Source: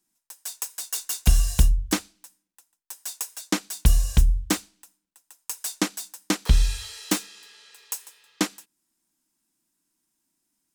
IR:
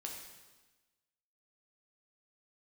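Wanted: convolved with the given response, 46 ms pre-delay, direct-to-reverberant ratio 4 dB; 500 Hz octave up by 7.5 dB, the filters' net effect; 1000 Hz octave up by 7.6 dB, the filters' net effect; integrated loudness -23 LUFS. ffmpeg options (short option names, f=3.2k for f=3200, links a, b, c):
-filter_complex "[0:a]equalizer=f=500:t=o:g=8.5,equalizer=f=1k:t=o:g=7,asplit=2[a][b];[1:a]atrim=start_sample=2205,adelay=46[c];[b][c]afir=irnorm=-1:irlink=0,volume=-2dB[d];[a][d]amix=inputs=2:normalize=0,volume=1dB"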